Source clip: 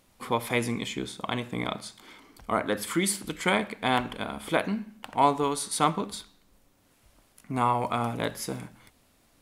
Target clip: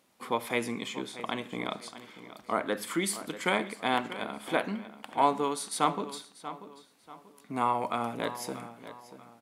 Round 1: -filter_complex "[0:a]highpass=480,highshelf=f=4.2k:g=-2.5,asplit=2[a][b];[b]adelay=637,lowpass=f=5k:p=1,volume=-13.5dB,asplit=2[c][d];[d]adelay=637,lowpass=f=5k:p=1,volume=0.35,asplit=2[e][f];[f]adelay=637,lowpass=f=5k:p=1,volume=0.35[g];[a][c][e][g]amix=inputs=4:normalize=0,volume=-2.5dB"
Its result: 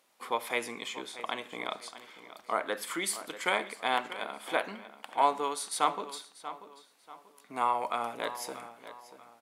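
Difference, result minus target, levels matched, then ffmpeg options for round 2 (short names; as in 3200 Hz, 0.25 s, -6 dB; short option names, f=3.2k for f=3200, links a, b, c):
250 Hz band -8.0 dB
-filter_complex "[0:a]highpass=200,highshelf=f=4.2k:g=-2.5,asplit=2[a][b];[b]adelay=637,lowpass=f=5k:p=1,volume=-13.5dB,asplit=2[c][d];[d]adelay=637,lowpass=f=5k:p=1,volume=0.35,asplit=2[e][f];[f]adelay=637,lowpass=f=5k:p=1,volume=0.35[g];[a][c][e][g]amix=inputs=4:normalize=0,volume=-2.5dB"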